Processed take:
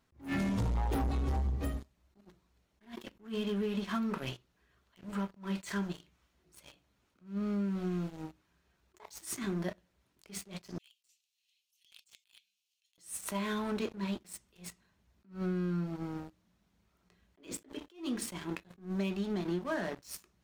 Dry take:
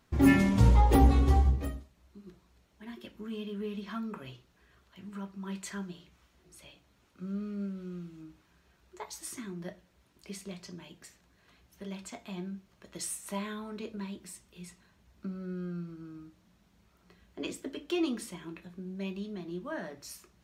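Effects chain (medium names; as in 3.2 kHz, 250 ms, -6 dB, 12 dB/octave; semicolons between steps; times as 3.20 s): 10.78–12.98 s: elliptic high-pass 2.7 kHz, stop band 60 dB; waveshaping leveller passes 3; compression 16:1, threshold -28 dBFS, peak gain reduction 15.5 dB; attacks held to a fixed rise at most 190 dB/s; trim -1.5 dB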